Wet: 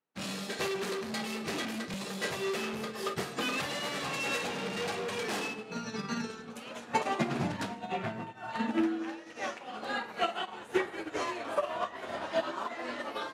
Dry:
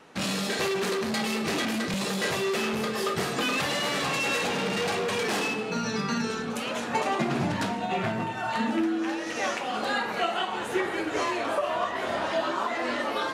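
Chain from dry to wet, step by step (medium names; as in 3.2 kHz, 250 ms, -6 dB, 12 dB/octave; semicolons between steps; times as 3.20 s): 7.92–10.04 s: treble shelf 5 kHz -4.5 dB; upward expansion 2.5:1, over -48 dBFS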